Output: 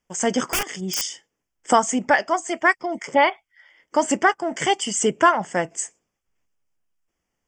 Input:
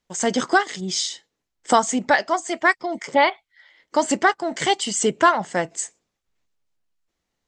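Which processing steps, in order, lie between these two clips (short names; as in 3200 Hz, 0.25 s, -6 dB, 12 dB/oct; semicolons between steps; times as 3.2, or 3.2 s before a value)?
0.51–1.02 wrapped overs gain 16 dB; Butterworth band-stop 4000 Hz, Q 2.7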